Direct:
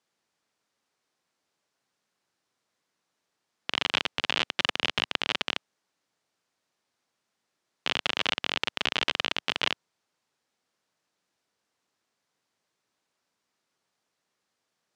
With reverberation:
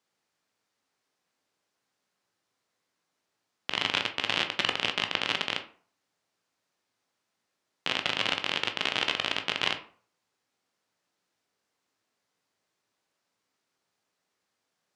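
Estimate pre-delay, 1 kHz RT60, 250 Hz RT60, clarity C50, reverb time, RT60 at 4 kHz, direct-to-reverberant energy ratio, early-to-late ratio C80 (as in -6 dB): 13 ms, 0.45 s, 0.40 s, 12.5 dB, 0.45 s, 0.30 s, 5.5 dB, 17.0 dB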